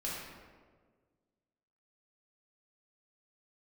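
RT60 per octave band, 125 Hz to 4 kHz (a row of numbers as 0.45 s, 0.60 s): 1.9 s, 1.9 s, 1.8 s, 1.4 s, 1.1 s, 0.85 s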